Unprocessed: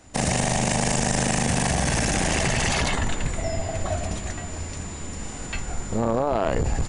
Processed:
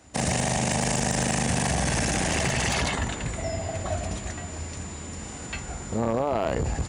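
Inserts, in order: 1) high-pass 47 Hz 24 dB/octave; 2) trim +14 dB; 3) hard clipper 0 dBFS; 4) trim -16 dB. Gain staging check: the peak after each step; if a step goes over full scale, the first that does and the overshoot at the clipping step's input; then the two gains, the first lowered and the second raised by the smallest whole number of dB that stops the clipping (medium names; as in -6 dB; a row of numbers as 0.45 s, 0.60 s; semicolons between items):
-9.5 dBFS, +4.5 dBFS, 0.0 dBFS, -16.0 dBFS; step 2, 4.5 dB; step 2 +9 dB, step 4 -11 dB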